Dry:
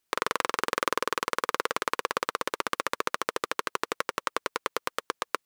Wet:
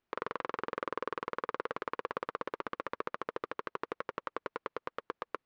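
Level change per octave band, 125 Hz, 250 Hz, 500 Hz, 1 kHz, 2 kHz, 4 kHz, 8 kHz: -5.0 dB, -5.5 dB, -6.0 dB, -8.5 dB, -11.0 dB, -18.0 dB, under -25 dB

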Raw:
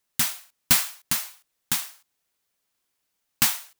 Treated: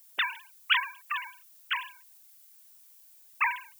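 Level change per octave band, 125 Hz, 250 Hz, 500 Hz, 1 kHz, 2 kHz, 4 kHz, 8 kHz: under -40 dB, under -30 dB, under -10 dB, +4.5 dB, +4.0 dB, -3.5 dB, -30.5 dB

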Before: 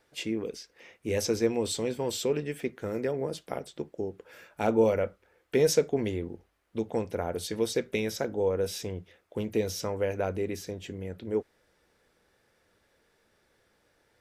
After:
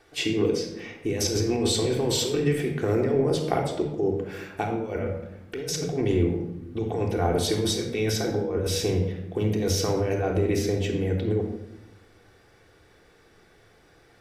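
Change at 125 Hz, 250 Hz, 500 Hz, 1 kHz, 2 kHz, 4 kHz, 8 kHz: +11.0, +6.0, +3.0, +5.5, +4.0, +8.0, +6.0 dB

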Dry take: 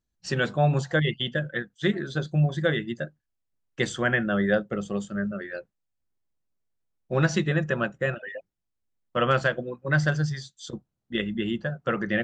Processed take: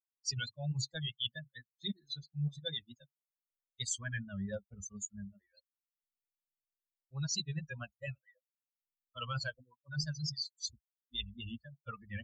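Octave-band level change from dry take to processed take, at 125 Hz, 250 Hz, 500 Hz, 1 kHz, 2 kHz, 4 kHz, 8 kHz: -13.5, -17.5, -23.5, -19.5, -18.5, -4.0, +2.0 dB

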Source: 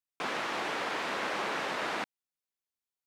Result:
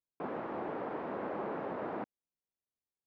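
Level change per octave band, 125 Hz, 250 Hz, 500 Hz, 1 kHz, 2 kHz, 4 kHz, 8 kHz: +2.0 dB, +1.5 dB, -0.5 dB, -6.0 dB, -15.0 dB, under -25 dB, under -35 dB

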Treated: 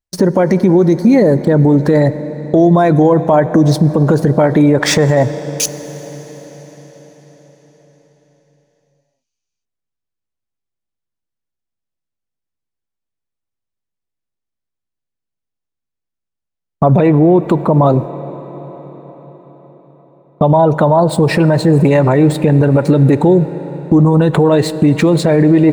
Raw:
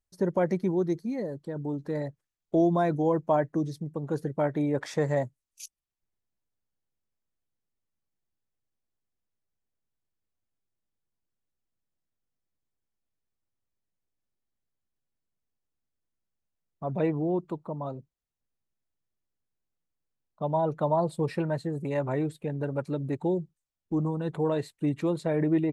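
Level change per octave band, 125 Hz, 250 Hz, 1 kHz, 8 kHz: +20.0, +18.5, +16.0, +25.5 dB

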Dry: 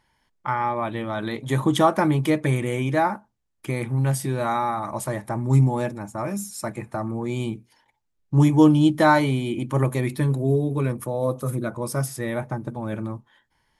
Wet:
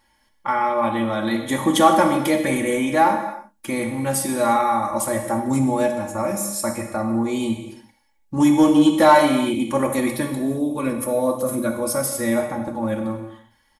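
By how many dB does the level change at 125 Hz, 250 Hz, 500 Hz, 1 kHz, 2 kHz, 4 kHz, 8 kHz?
-9.0, +3.5, +4.5, +5.5, +3.0, +5.5, +9.0 dB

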